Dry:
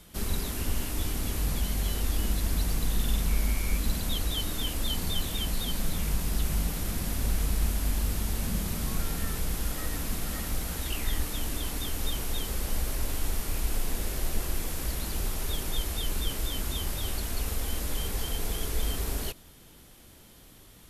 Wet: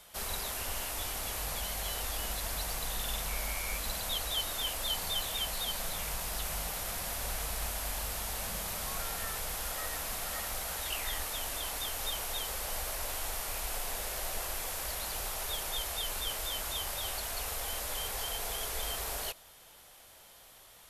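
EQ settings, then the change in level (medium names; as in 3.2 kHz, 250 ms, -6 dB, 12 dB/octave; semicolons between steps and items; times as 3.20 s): resonant low shelf 430 Hz -13 dB, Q 1.5; 0.0 dB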